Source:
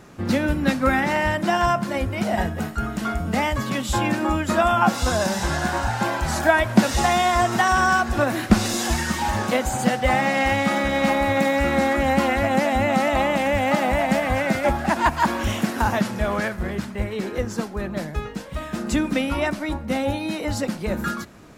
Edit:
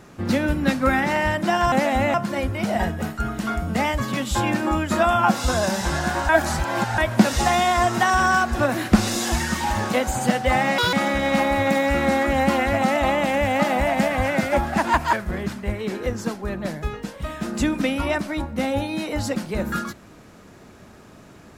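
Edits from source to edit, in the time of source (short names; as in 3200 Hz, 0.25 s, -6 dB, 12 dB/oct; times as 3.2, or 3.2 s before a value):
5.87–6.56 reverse
10.36–10.63 speed 179%
12.52–12.94 move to 1.72
15.25–16.45 cut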